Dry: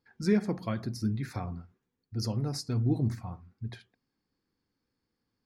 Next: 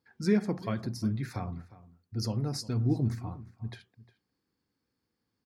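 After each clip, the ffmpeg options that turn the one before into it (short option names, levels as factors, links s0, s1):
-filter_complex "[0:a]highpass=51,asplit=2[s0][s1];[s1]adelay=355.7,volume=0.126,highshelf=f=4000:g=-8[s2];[s0][s2]amix=inputs=2:normalize=0"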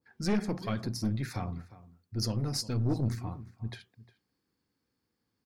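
-af "aeval=exprs='(tanh(17.8*val(0)+0.4)-tanh(0.4))/17.8':c=same,adynamicequalizer=threshold=0.00224:dfrequency=1800:dqfactor=0.7:tfrequency=1800:tqfactor=0.7:attack=5:release=100:ratio=0.375:range=2:mode=boostabove:tftype=highshelf,volume=1.26"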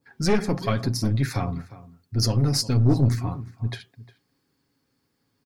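-af "aecho=1:1:7.3:0.43,volume=2.66"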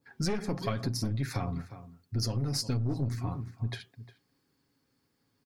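-af "acompressor=threshold=0.0562:ratio=6,volume=0.75"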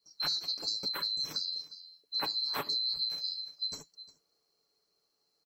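-af "afftfilt=real='real(if(lt(b,736),b+184*(1-2*mod(floor(b/184),2)),b),0)':imag='imag(if(lt(b,736),b+184*(1-2*mod(floor(b/184),2)),b),0)':win_size=2048:overlap=0.75,equalizer=f=200:w=0.57:g=8,volume=0.668"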